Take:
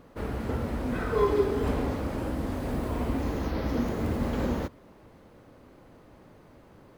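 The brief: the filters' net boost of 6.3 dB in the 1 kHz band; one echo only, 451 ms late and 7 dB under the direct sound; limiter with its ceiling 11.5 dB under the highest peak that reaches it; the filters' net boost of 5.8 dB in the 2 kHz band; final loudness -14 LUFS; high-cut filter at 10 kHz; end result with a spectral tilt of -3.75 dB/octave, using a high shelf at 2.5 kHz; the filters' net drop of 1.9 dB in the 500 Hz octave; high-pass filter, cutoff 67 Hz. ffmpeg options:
-af "highpass=67,lowpass=10000,equalizer=f=500:t=o:g=-4,equalizer=f=1000:t=o:g=7.5,equalizer=f=2000:t=o:g=7,highshelf=f=2500:g=-5,alimiter=limit=0.0794:level=0:latency=1,aecho=1:1:451:0.447,volume=7.5"

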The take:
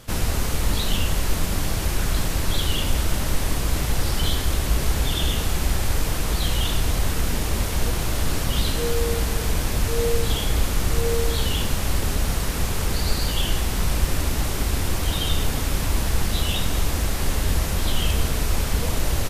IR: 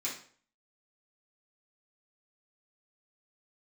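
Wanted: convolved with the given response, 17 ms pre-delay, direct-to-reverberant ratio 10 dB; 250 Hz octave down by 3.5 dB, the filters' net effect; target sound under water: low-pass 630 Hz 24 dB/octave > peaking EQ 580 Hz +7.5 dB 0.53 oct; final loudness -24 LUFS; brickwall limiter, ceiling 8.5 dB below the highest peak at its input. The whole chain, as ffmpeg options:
-filter_complex "[0:a]equalizer=f=250:t=o:g=-5.5,alimiter=limit=0.168:level=0:latency=1,asplit=2[s0][s1];[1:a]atrim=start_sample=2205,adelay=17[s2];[s1][s2]afir=irnorm=-1:irlink=0,volume=0.224[s3];[s0][s3]amix=inputs=2:normalize=0,lowpass=f=630:w=0.5412,lowpass=f=630:w=1.3066,equalizer=f=580:t=o:w=0.53:g=7.5,volume=1.88"

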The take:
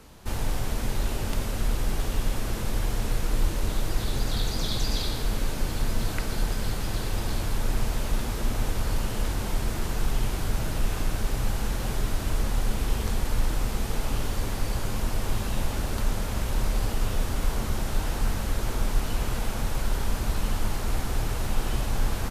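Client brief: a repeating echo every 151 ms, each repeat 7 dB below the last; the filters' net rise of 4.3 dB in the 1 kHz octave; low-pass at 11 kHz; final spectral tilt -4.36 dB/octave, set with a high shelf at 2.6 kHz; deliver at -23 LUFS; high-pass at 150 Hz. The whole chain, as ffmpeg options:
-af "highpass=150,lowpass=11000,equalizer=f=1000:t=o:g=6,highshelf=f=2600:g=-4,aecho=1:1:151|302|453|604|755:0.447|0.201|0.0905|0.0407|0.0183,volume=3.16"

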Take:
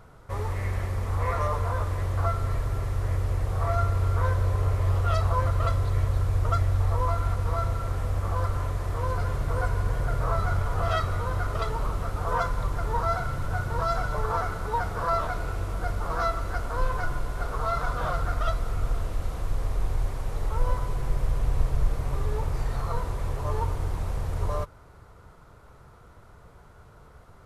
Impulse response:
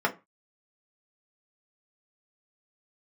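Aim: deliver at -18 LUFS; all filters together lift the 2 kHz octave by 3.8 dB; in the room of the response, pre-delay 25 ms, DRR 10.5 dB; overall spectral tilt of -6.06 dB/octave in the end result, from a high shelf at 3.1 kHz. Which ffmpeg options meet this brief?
-filter_complex "[0:a]equalizer=f=2000:t=o:g=8,highshelf=f=3100:g=-7.5,asplit=2[s0][s1];[1:a]atrim=start_sample=2205,adelay=25[s2];[s1][s2]afir=irnorm=-1:irlink=0,volume=0.0708[s3];[s0][s3]amix=inputs=2:normalize=0,volume=3.16"

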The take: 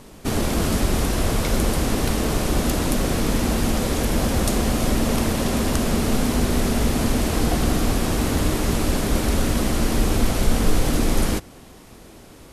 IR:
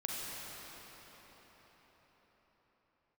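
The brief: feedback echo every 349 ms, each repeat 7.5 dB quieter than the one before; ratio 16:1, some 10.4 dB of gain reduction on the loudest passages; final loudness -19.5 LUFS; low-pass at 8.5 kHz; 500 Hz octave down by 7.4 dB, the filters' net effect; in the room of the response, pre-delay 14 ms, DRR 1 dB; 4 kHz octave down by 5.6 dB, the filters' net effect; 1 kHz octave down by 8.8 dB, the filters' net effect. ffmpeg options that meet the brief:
-filter_complex "[0:a]lowpass=8500,equalizer=f=500:t=o:g=-7.5,equalizer=f=1000:t=o:g=-9,equalizer=f=4000:t=o:g=-6.5,acompressor=threshold=0.0794:ratio=16,aecho=1:1:349|698|1047|1396|1745:0.422|0.177|0.0744|0.0312|0.0131,asplit=2[s0][s1];[1:a]atrim=start_sample=2205,adelay=14[s2];[s1][s2]afir=irnorm=-1:irlink=0,volume=0.596[s3];[s0][s3]amix=inputs=2:normalize=0,volume=2.11"

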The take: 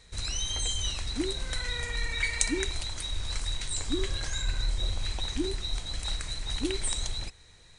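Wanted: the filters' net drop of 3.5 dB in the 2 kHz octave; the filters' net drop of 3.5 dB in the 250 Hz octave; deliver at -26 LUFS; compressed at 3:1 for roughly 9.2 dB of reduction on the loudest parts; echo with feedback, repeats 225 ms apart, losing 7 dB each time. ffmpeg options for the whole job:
-af "equalizer=f=250:t=o:g=-5,equalizer=f=2000:t=o:g=-4,acompressor=threshold=0.0158:ratio=3,aecho=1:1:225|450|675|900|1125:0.447|0.201|0.0905|0.0407|0.0183,volume=4.22"

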